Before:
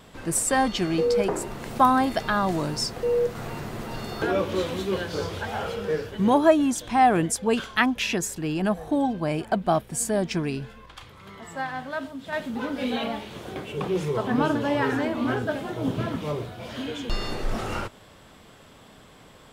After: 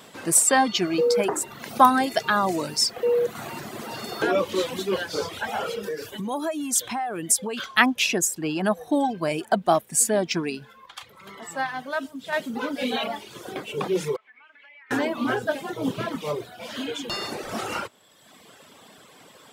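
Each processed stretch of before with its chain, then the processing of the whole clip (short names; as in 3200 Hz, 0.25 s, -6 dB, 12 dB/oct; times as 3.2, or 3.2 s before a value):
5.83–7.61 compressor 8:1, threshold -27 dBFS + high shelf 7200 Hz +9 dB
14.16–14.91 band-pass 2200 Hz, Q 10 + compressor 12:1, threshold -49 dBFS
whole clip: Bessel high-pass 230 Hz, order 2; reverb removal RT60 1.1 s; high shelf 4600 Hz +5.5 dB; gain +3.5 dB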